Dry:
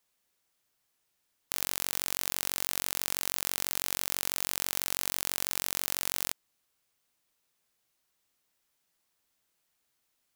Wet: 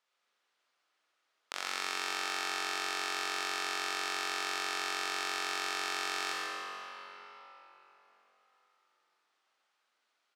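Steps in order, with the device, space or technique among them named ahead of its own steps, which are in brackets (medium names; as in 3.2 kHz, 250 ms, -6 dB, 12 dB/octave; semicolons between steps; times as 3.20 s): station announcement (band-pass 460–4200 Hz; peaking EQ 1.3 kHz +5.5 dB 0.33 oct; loudspeakers at several distances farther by 38 m -9 dB, 49 m -7 dB; reverberation RT60 4.0 s, pre-delay 24 ms, DRR -1.5 dB)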